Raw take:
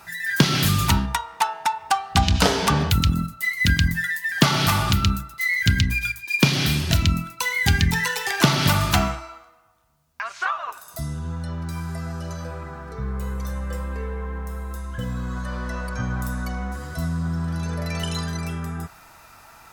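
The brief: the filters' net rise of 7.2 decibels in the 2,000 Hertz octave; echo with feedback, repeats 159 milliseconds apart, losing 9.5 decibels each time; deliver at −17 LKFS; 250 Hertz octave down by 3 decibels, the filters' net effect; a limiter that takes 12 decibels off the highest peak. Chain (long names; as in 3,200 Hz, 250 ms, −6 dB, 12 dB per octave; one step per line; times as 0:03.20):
parametric band 250 Hz −5 dB
parametric band 2,000 Hz +8.5 dB
brickwall limiter −11.5 dBFS
repeating echo 159 ms, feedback 33%, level −9.5 dB
level +5 dB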